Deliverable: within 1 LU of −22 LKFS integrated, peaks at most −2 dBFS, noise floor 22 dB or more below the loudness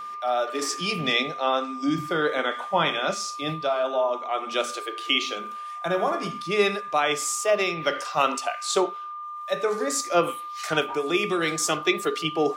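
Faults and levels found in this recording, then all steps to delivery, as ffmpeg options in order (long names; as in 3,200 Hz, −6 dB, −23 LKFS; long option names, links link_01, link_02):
interfering tone 1,200 Hz; level of the tone −33 dBFS; integrated loudness −25.5 LKFS; sample peak −7.0 dBFS; target loudness −22.0 LKFS
→ -af "bandreject=frequency=1200:width=30"
-af "volume=3.5dB"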